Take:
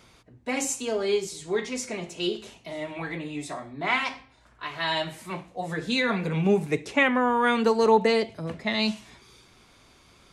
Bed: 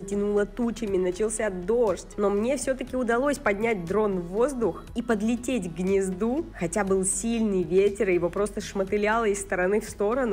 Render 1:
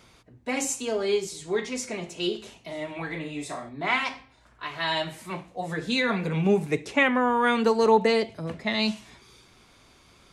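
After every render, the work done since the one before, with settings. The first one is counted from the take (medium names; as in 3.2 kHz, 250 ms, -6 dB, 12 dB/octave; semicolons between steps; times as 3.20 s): 3.08–3.69 s: flutter echo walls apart 6.5 m, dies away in 0.29 s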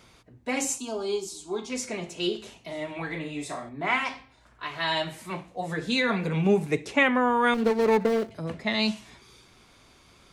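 0.78–1.70 s: static phaser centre 510 Hz, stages 6; 3.69–4.09 s: peaking EQ 4 kHz -8.5 dB 0.52 oct; 7.54–8.31 s: median filter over 41 samples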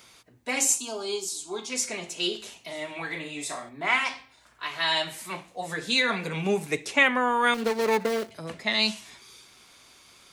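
tilt EQ +2.5 dB/octave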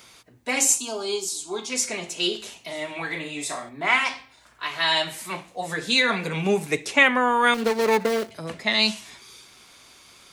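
trim +3.5 dB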